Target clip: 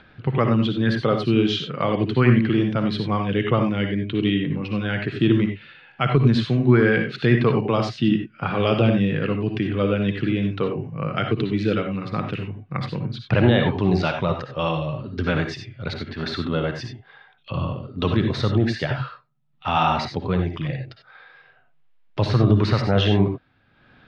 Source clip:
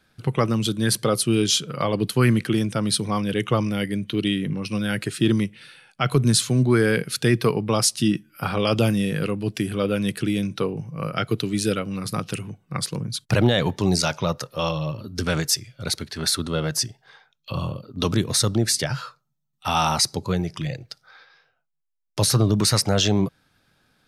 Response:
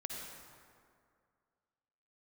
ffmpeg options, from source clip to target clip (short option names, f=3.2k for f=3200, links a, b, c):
-filter_complex "[1:a]atrim=start_sample=2205,atrim=end_sample=4410[a];[0:a][a]afir=irnorm=-1:irlink=0,acompressor=mode=upward:threshold=-45dB:ratio=2.5,lowpass=f=3.2k:w=0.5412,lowpass=f=3.2k:w=1.3066,volume=4.5dB" -ar 48000 -c:a aac -b:a 192k